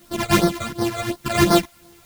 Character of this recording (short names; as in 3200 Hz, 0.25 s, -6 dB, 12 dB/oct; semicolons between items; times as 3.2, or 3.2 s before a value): a buzz of ramps at a fixed pitch in blocks of 128 samples; phasing stages 12, 2.8 Hz, lowest notch 280–2700 Hz; a quantiser's noise floor 10-bit, dither triangular; a shimmering, thickened sound